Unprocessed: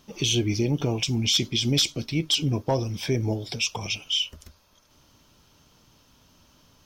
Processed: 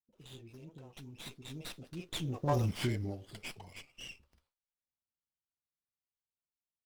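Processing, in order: Doppler pass-by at 2.64, 32 m/s, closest 3.5 m; gate with hold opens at -59 dBFS; bands offset in time lows, highs 40 ms, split 430 Hz; running maximum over 5 samples

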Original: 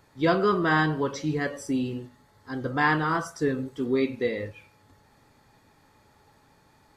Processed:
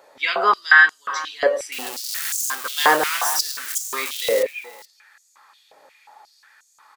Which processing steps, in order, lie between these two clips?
1.72–4.43 switching spikes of -22 dBFS; echo 0.426 s -18 dB; stepped high-pass 5.6 Hz 560–6800 Hz; gain +6 dB

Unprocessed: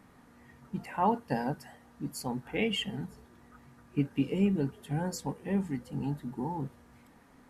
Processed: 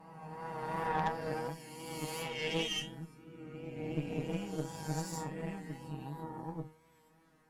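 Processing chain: spectral swells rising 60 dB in 2.64 s; resonator 160 Hz, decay 0.25 s, harmonics all, mix 100%; vibrato 2.8 Hz 37 cents; added harmonics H 4 -10 dB, 6 -19 dB, 8 -25 dB, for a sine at -23 dBFS

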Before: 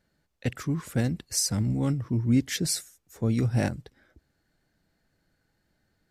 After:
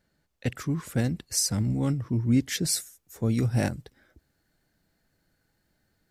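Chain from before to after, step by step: high shelf 9300 Hz +2 dB, from 2.73 s +8.5 dB

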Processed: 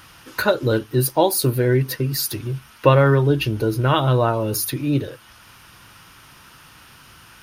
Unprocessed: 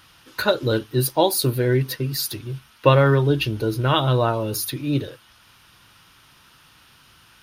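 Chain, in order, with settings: bell 3700 Hz -5.5 dB 0.72 oct; in parallel at +2.5 dB: compressor, threshold -33 dBFS, peak gain reduction 21 dB

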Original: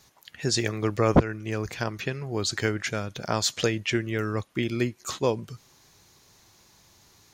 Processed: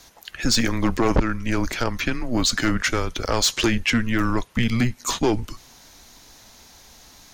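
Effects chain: in parallel at +2 dB: limiter -16.5 dBFS, peak gain reduction 9.5 dB; on the sum: frequency shift -120 Hz; soft clip -14.5 dBFS, distortion -11 dB; gain +2.5 dB

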